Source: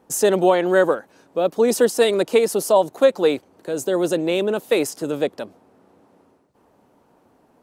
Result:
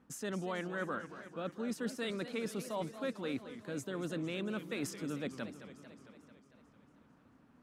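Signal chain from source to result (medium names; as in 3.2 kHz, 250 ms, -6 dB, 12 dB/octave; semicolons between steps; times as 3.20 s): low-pass 2 kHz 6 dB/octave; high-order bell 570 Hz -12 dB; reverse; compression, threshold -33 dBFS, peak gain reduction 13.5 dB; reverse; modulated delay 224 ms, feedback 66%, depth 209 cents, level -12 dB; trim -2.5 dB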